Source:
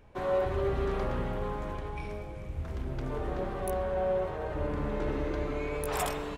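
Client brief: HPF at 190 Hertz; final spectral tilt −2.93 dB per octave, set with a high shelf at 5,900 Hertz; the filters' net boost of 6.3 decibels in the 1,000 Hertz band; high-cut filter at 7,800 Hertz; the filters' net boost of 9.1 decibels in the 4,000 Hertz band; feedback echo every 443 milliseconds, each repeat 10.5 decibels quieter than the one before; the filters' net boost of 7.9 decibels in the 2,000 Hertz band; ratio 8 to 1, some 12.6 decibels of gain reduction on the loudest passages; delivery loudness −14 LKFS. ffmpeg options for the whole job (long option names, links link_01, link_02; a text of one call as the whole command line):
ffmpeg -i in.wav -af "highpass=190,lowpass=7800,equalizer=frequency=1000:width_type=o:gain=6.5,equalizer=frequency=2000:width_type=o:gain=5.5,equalizer=frequency=4000:width_type=o:gain=8.5,highshelf=frequency=5900:gain=3.5,acompressor=threshold=-35dB:ratio=8,aecho=1:1:443|886|1329:0.299|0.0896|0.0269,volume=24dB" out.wav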